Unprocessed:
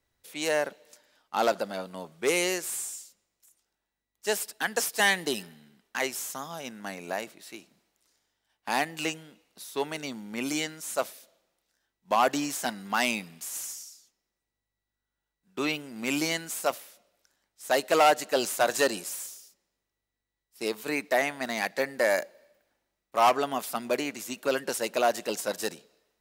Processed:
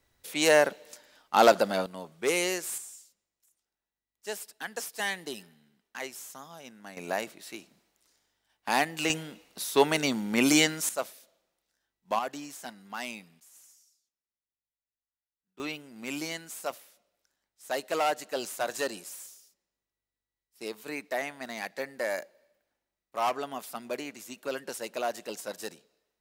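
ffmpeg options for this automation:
-af "asetnsamples=n=441:p=0,asendcmd='1.86 volume volume -1.5dB;2.78 volume volume -8.5dB;6.97 volume volume 1.5dB;9.1 volume volume 8.5dB;10.89 volume volume -3.5dB;12.19 volume volume -11dB;13.4 volume volume -20dB;15.6 volume volume -7dB',volume=6dB"

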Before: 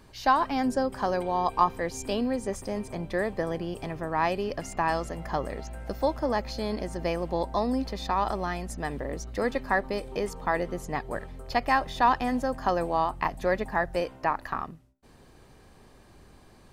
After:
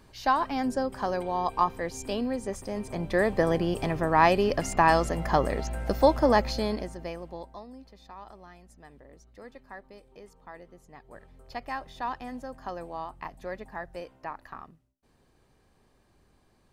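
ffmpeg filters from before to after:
-af "volume=14dB,afade=t=in:st=2.72:d=0.75:silence=0.398107,afade=t=out:st=6.39:d=0.56:silence=0.237137,afade=t=out:st=6.95:d=0.71:silence=0.237137,afade=t=in:st=10.96:d=0.47:silence=0.398107"

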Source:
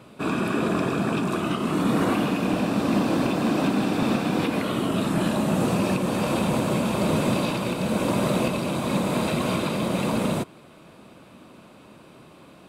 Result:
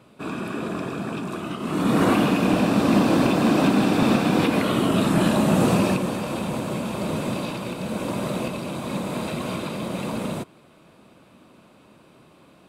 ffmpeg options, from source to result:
-af "volume=4dB,afade=t=in:st=1.58:d=0.49:silence=0.354813,afade=t=out:st=5.75:d=0.47:silence=0.398107"

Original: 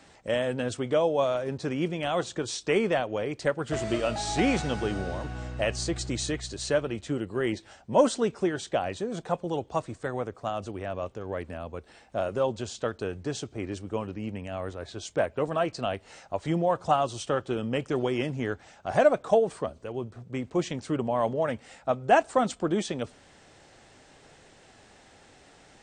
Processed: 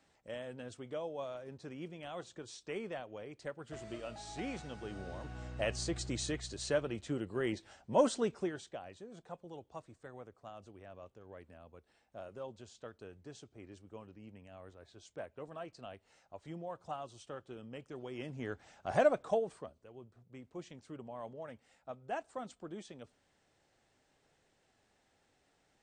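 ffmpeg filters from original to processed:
-af "volume=5.5dB,afade=t=in:st=4.79:d=0.9:silence=0.334965,afade=t=out:st=8.25:d=0.52:silence=0.266073,afade=t=in:st=18.04:d=0.88:silence=0.237137,afade=t=out:st=18.92:d=0.85:silence=0.223872"

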